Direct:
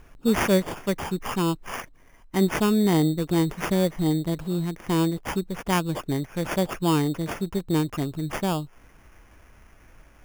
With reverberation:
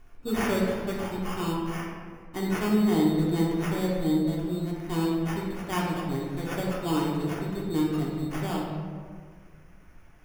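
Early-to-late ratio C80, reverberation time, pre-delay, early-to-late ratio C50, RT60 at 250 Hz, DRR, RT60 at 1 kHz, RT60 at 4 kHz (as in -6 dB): 2.5 dB, 1.8 s, 3 ms, 0.5 dB, 2.2 s, -4.5 dB, 1.6 s, 1.0 s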